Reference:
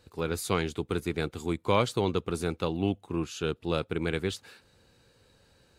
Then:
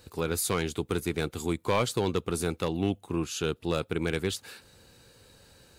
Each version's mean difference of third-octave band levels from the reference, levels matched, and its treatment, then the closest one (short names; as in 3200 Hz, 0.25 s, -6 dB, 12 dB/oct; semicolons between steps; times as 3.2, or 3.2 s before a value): 3.0 dB: high shelf 7300 Hz +10 dB; in parallel at +1 dB: compressor, threshold -38 dBFS, peak gain reduction 18.5 dB; on the sum: hard clip -16 dBFS, distortion -17 dB; gain -1.5 dB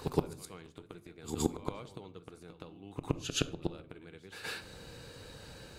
11.5 dB: flipped gate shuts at -25 dBFS, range -34 dB; on a send: reverse echo 0.119 s -8.5 dB; on the sum: shoebox room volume 760 m³, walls furnished, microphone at 0.53 m; gain +11.5 dB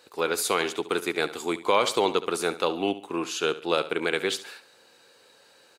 7.0 dB: HPF 460 Hz 12 dB/oct; feedback echo 70 ms, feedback 35%, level -15 dB; maximiser +17.5 dB; gain -9 dB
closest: first